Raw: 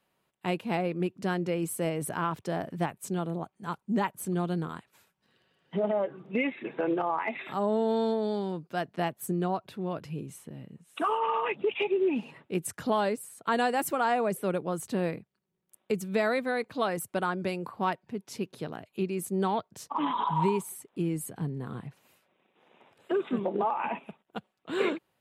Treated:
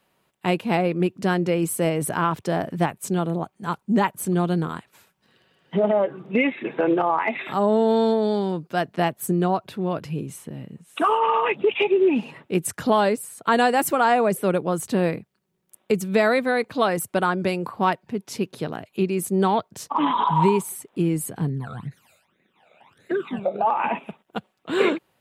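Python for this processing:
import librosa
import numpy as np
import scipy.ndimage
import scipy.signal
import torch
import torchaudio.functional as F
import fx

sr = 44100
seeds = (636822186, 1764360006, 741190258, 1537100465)

y = fx.phaser_stages(x, sr, stages=12, low_hz=300.0, high_hz=1000.0, hz=fx.line((21.49, 2.8), (23.66, 0.96)), feedback_pct=50, at=(21.49, 23.66), fade=0.02)
y = y * librosa.db_to_amplitude(8.0)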